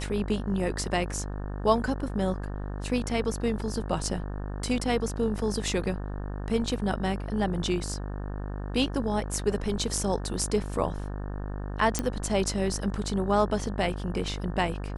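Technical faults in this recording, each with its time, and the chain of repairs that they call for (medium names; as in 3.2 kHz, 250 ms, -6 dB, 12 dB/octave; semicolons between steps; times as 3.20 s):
buzz 50 Hz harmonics 36 -34 dBFS
11.99 s: pop -11 dBFS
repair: de-click; de-hum 50 Hz, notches 36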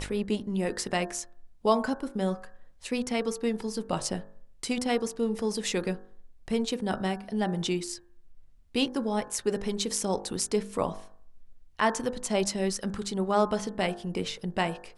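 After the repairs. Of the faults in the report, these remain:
nothing left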